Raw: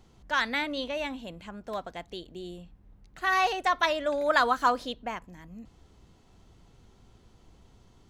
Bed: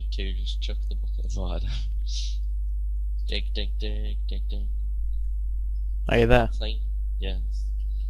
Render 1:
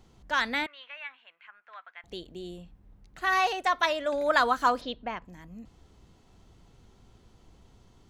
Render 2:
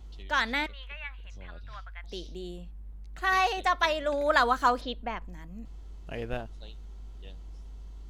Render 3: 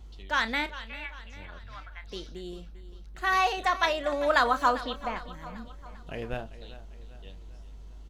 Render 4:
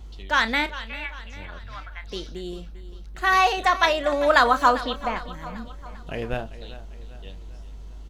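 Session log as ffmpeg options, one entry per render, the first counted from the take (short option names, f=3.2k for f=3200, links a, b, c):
-filter_complex "[0:a]asettb=1/sr,asplit=3[a][b][c];[a]atrim=end=0.664[d];[b]atrim=start=0.66:end=2.04,asetpts=PTS-STARTPTS,afade=t=in:d=0.004:c=qsin,afade=t=out:st=1.376:d=0.004:c=qsin,asuperpass=centerf=1800:order=4:qfactor=1.4[e];[c]atrim=start=2.036[f];[d][e]acrossfade=d=0.004:c1=hsin:c2=qsin[g];[g][f]acrossfade=d=0.004:c1=qsin:c2=hsin,asettb=1/sr,asplit=3[h][i][j];[h]atrim=end=3.404[k];[i]atrim=start=3.4:end=4.13,asetpts=PTS-STARTPTS,afade=t=in:d=0.004:c=qsin,afade=t=out:st=0.726:d=0.004:c=qsin,lowshelf=f=190:g=-7.5[l];[j]atrim=start=4.126[m];[k][l]acrossfade=d=0.004:c1=hsin:c2=qsin[n];[n][m]acrossfade=d=0.004:c1=qsin:c2=hsin,asplit=3[o][p][q];[o]afade=t=out:st=4.8:d=0.02[r];[p]lowpass=f=5k:w=0.5412,lowpass=f=5k:w=1.3066,afade=t=in:st=4.8:d=0.02,afade=t=out:st=5.24:d=0.02[s];[q]afade=t=in:st=5.24:d=0.02[t];[r][s][t]amix=inputs=3:normalize=0"
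-filter_complex "[1:a]volume=-16.5dB[a];[0:a][a]amix=inputs=2:normalize=0"
-filter_complex "[0:a]asplit=2[a][b];[b]adelay=31,volume=-12.5dB[c];[a][c]amix=inputs=2:normalize=0,aecho=1:1:397|794|1191|1588:0.168|0.0823|0.0403|0.0198"
-af "volume=6dB"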